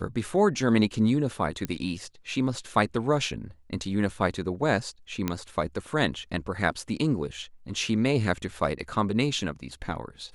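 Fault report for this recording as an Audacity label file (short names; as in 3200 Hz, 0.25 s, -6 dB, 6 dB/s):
1.650000	1.650000	pop -16 dBFS
5.280000	5.280000	pop -12 dBFS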